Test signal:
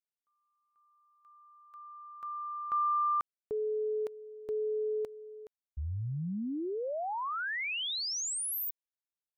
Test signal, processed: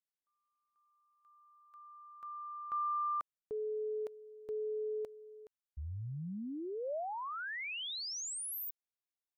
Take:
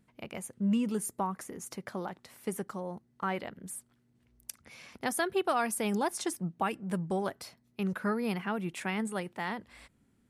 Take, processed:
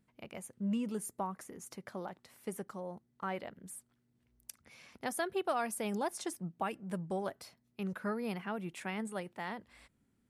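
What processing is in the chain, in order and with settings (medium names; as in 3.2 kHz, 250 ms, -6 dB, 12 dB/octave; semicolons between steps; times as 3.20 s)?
dynamic bell 600 Hz, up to +4 dB, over -45 dBFS, Q 2.5; trim -6 dB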